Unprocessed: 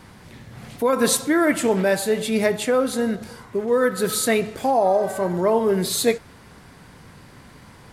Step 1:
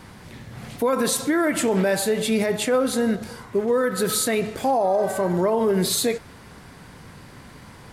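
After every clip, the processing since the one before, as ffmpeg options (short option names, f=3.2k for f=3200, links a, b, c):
-af "alimiter=limit=-15dB:level=0:latency=1:release=53,volume=2dB"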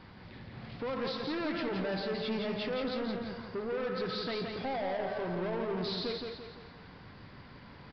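-af "aresample=11025,asoftclip=type=tanh:threshold=-24dB,aresample=44100,aecho=1:1:171|342|513|684|855:0.596|0.262|0.115|0.0507|0.0223,volume=-8.5dB"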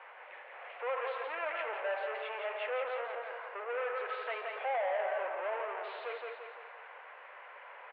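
-af "asoftclip=type=tanh:threshold=-34dB,asuperpass=centerf=1200:order=12:qfactor=0.52,volume=6dB"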